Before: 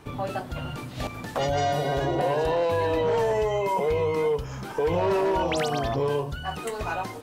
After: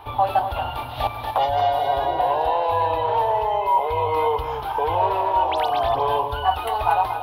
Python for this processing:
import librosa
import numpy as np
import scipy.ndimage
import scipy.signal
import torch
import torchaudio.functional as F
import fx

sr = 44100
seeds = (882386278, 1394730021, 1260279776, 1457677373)

p1 = fx.curve_eq(x, sr, hz=(110.0, 160.0, 280.0, 520.0, 850.0, 1300.0, 1900.0, 3500.0, 7400.0, 11000.0), db=(0, -21, -9, -2, 14, 2, -3, 5, -23, 3))
p2 = fx.rider(p1, sr, range_db=4, speed_s=0.5)
y = p2 + fx.echo_single(p2, sr, ms=235, db=-8.5, dry=0)